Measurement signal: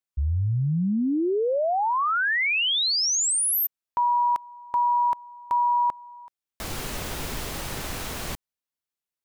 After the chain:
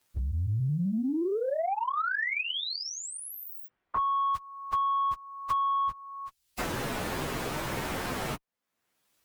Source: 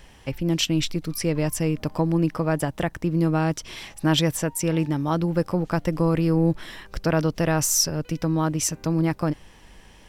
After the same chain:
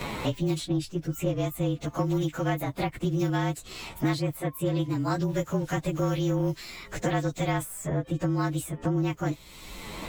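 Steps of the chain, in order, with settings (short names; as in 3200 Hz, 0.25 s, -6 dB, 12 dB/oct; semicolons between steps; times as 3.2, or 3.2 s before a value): inharmonic rescaling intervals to 110%; added harmonics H 3 -21 dB, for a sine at -10 dBFS; three-band squash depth 100%; gain -2 dB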